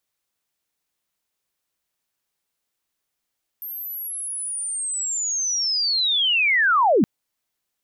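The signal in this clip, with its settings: chirp linear 13000 Hz -> 170 Hz -30 dBFS -> -13 dBFS 3.42 s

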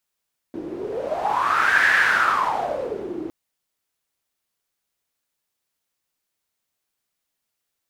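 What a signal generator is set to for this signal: wind-like swept noise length 2.76 s, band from 330 Hz, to 1700 Hz, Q 8.7, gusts 1, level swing 14 dB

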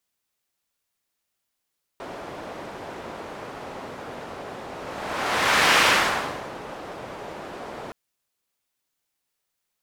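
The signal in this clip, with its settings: whoosh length 5.92 s, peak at 3.79, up 1.14 s, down 0.80 s, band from 630 Hz, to 1800 Hz, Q 0.83, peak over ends 19.5 dB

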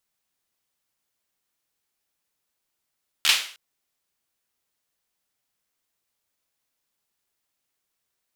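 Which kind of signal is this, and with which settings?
hand clap length 0.31 s, apart 13 ms, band 2900 Hz, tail 0.45 s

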